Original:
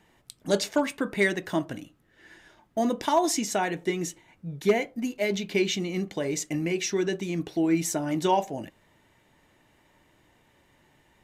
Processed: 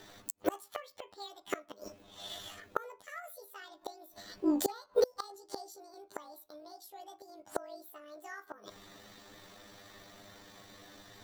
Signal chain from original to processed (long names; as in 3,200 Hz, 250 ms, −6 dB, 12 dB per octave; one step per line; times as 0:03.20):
pitch shift by two crossfaded delay taps +12 semitones
gate with flip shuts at −24 dBFS, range −31 dB
level +9 dB